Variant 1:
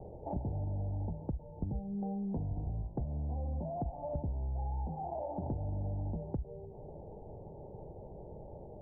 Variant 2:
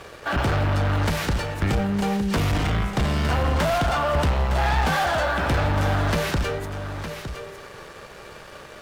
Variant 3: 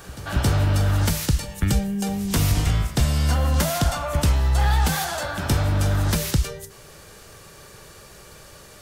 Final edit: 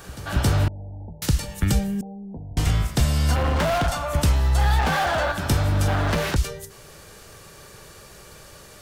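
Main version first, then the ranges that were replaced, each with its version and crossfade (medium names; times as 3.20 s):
3
0.68–1.22 s: from 1
2.01–2.57 s: from 1
3.36–3.88 s: from 2
4.79–5.32 s: from 2
5.88–6.36 s: from 2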